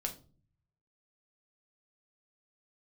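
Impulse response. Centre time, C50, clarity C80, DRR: 11 ms, 13.0 dB, 18.5 dB, 2.0 dB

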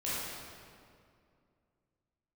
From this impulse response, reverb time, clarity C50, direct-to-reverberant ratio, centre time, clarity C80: 2.3 s, -4.5 dB, -10.5 dB, 149 ms, -1.5 dB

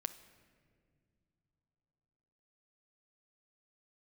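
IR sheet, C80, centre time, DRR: 15.0 dB, 9 ms, 10.5 dB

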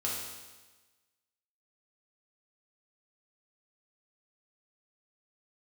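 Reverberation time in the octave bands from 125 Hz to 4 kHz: 1.2 s, 1.3 s, 1.2 s, 1.3 s, 1.2 s, 1.2 s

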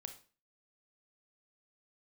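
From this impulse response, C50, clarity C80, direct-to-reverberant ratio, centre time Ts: 10.5 dB, 15.5 dB, 6.5 dB, 10 ms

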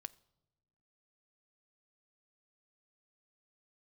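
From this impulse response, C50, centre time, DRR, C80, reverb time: 22.5 dB, 2 ms, 12.0 dB, 24.5 dB, no single decay rate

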